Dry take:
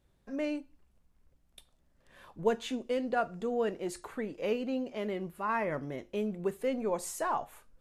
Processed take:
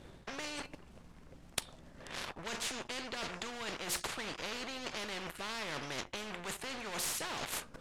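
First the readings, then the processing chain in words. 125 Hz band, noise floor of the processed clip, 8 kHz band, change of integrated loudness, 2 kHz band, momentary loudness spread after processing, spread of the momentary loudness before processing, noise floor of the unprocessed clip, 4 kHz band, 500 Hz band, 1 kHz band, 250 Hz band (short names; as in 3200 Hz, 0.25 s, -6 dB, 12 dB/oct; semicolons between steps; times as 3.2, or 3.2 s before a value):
-5.5 dB, -57 dBFS, +6.5 dB, -5.5 dB, +1.5 dB, 12 LU, 7 LU, -70 dBFS, +8.5 dB, -13.0 dB, -7.5 dB, -11.5 dB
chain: half-wave gain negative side -3 dB; sample leveller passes 2; in parallel at -2 dB: vocal rider within 3 dB; on the sum: air absorption 54 m; reverse; compressor 12:1, threshold -33 dBFS, peak gain reduction 18.5 dB; reverse; spectral compressor 4:1; gain +10.5 dB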